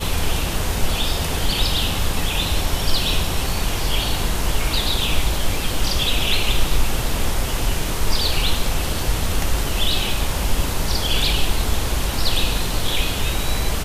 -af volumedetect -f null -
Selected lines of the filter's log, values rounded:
mean_volume: -18.1 dB
max_volume: -4.0 dB